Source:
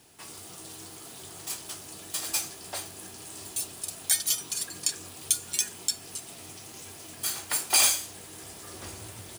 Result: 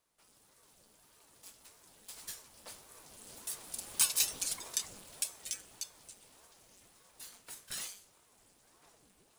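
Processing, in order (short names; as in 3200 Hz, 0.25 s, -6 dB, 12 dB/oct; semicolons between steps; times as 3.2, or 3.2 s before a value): Doppler pass-by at 4.22, 9 m/s, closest 4.1 m; ring modulator with a swept carrier 460 Hz, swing 80%, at 1.7 Hz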